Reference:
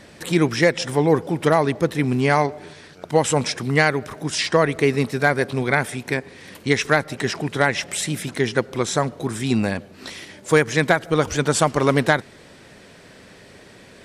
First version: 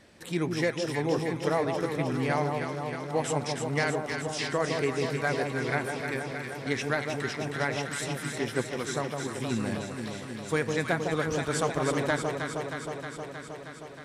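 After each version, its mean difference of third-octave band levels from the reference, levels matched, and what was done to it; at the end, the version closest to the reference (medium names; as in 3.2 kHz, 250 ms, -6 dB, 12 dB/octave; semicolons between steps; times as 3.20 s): 7.5 dB: flange 0.35 Hz, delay 2.6 ms, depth 8.2 ms, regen -80%; echo whose repeats swap between lows and highs 157 ms, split 1.1 kHz, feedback 86%, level -4 dB; trim -7 dB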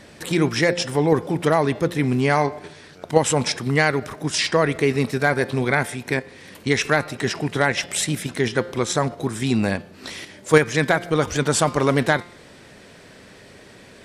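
1.0 dB: de-hum 174.9 Hz, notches 31; in parallel at +2 dB: level held to a coarse grid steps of 13 dB; on the sum: trim -4 dB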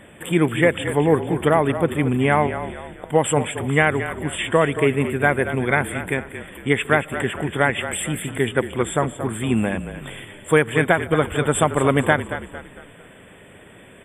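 5.5 dB: FFT band-reject 3.6–7.3 kHz; on a send: frequency-shifting echo 226 ms, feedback 41%, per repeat -35 Hz, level -11 dB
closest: second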